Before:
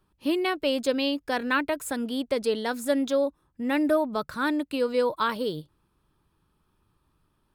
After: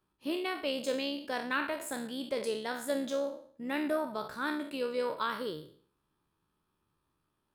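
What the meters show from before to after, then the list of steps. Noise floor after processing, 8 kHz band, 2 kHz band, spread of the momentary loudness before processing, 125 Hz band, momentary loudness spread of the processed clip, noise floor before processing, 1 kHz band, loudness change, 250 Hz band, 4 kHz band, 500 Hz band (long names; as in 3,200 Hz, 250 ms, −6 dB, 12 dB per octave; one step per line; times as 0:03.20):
−81 dBFS, −5.0 dB, −6.0 dB, 6 LU, −8.5 dB, 5 LU, −72 dBFS, −7.0 dB, −8.0 dB, −9.5 dB, −6.0 dB, −8.0 dB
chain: peak hold with a decay on every bin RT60 0.51 s
low-shelf EQ 100 Hz −10.5 dB
amplitude modulation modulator 70 Hz, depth 20%
level −7 dB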